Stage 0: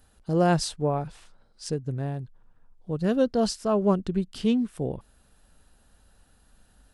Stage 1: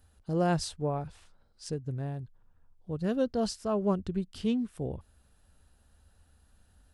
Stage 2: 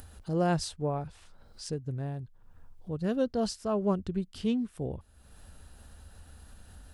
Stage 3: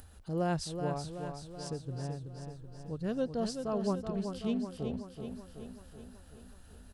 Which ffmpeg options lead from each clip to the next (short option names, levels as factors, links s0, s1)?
-af "equalizer=f=80:t=o:w=0.56:g=12.5,volume=0.501"
-af "acompressor=mode=upward:threshold=0.0126:ratio=2.5"
-af "aecho=1:1:378|756|1134|1512|1890|2268|2646|3024:0.447|0.264|0.155|0.0917|0.0541|0.0319|0.0188|0.0111,volume=0.596"